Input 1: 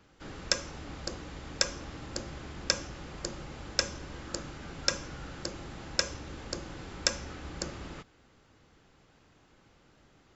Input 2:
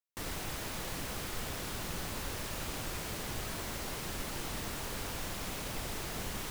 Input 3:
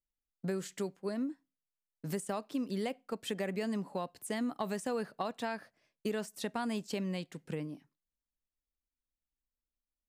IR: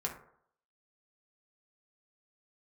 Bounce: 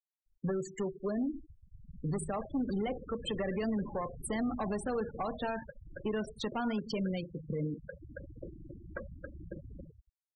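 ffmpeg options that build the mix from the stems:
-filter_complex "[0:a]lowpass=1500,dynaudnorm=framelen=100:gausssize=9:maxgain=4dB,adelay=1900,volume=-8.5dB,asplit=3[link_01][link_02][link_03];[link_02]volume=-17dB[link_04];[link_03]volume=-5.5dB[link_05];[1:a]dynaudnorm=framelen=300:gausssize=9:maxgain=9dB,volume=-15dB[link_06];[2:a]highpass=frequency=56:poles=1,bandreject=frequency=159.2:width_type=h:width=4,bandreject=frequency=318.4:width_type=h:width=4,bandreject=frequency=477.6:width_type=h:width=4,bandreject=frequency=636.8:width_type=h:width=4,bandreject=frequency=796:width_type=h:width=4,bandreject=frequency=955.2:width_type=h:width=4,bandreject=frequency=1114.4:width_type=h:width=4,bandreject=frequency=1273.6:width_type=h:width=4,bandreject=frequency=1432.8:width_type=h:width=4,bandreject=frequency=1592:width_type=h:width=4,bandreject=frequency=1751.2:width_type=h:width=4,bandreject=frequency=1910.4:width_type=h:width=4,bandreject=frequency=2069.6:width_type=h:width=4,bandreject=frequency=2228.8:width_type=h:width=4,bandreject=frequency=2388:width_type=h:width=4,bandreject=frequency=2547.2:width_type=h:width=4,bandreject=frequency=2706.4:width_type=h:width=4,bandreject=frequency=2865.6:width_type=h:width=4,bandreject=frequency=3024.8:width_type=h:width=4,bandreject=frequency=3184:width_type=h:width=4,bandreject=frequency=3343.2:width_type=h:width=4,bandreject=frequency=3502.4:width_type=h:width=4,bandreject=frequency=3661.6:width_type=h:width=4,bandreject=frequency=3820.8:width_type=h:width=4,bandreject=frequency=3980:width_type=h:width=4,volume=31.5dB,asoftclip=hard,volume=-31.5dB,volume=2.5dB,asplit=3[link_07][link_08][link_09];[link_08]volume=-7dB[link_10];[link_09]apad=whole_len=540344[link_11];[link_01][link_11]sidechaincompress=threshold=-46dB:ratio=8:attack=9.3:release=485[link_12];[3:a]atrim=start_sample=2205[link_13];[link_04][link_10]amix=inputs=2:normalize=0[link_14];[link_14][link_13]afir=irnorm=-1:irlink=0[link_15];[link_05]aecho=0:1:275|550|825:1|0.17|0.0289[link_16];[link_12][link_06][link_07][link_15][link_16]amix=inputs=5:normalize=0,afftfilt=real='re*gte(hypot(re,im),0.0251)':imag='im*gte(hypot(re,im),0.0251)':win_size=1024:overlap=0.75,alimiter=level_in=3dB:limit=-24dB:level=0:latency=1:release=24,volume=-3dB"

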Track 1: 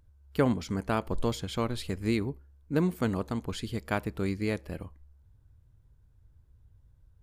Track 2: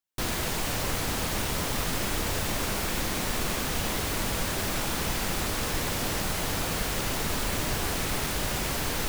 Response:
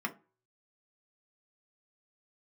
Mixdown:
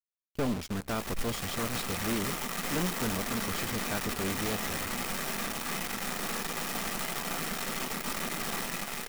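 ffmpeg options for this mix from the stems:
-filter_complex "[0:a]volume=1dB[link_01];[1:a]acrusher=bits=4:dc=4:mix=0:aa=0.000001,dynaudnorm=framelen=100:gausssize=17:maxgain=10dB,equalizer=frequency=85:width_type=o:width=1.1:gain=-12.5,adelay=700,volume=-7.5dB,asplit=2[link_02][link_03];[link_03]volume=-5dB[link_04];[2:a]atrim=start_sample=2205[link_05];[link_04][link_05]afir=irnorm=-1:irlink=0[link_06];[link_01][link_02][link_06]amix=inputs=3:normalize=0,agate=range=-11dB:threshold=-37dB:ratio=16:detection=peak,aeval=exprs='(tanh(17.8*val(0)+0.4)-tanh(0.4))/17.8':channel_layout=same,acrusher=bits=7:dc=4:mix=0:aa=0.000001"

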